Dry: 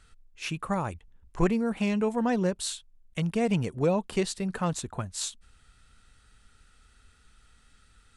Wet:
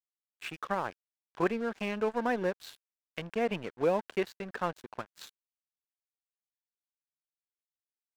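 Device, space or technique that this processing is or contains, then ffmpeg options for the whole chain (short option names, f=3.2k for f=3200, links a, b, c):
pocket radio on a weak battery: -af "highpass=320,lowpass=3.1k,aeval=exprs='sgn(val(0))*max(abs(val(0))-0.00668,0)':c=same,equalizer=f=1.6k:t=o:w=0.23:g=5.5"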